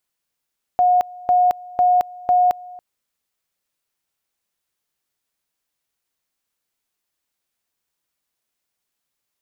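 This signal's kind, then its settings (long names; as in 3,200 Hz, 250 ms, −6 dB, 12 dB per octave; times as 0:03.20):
tone at two levels in turn 722 Hz −11.5 dBFS, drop 22.5 dB, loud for 0.22 s, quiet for 0.28 s, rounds 4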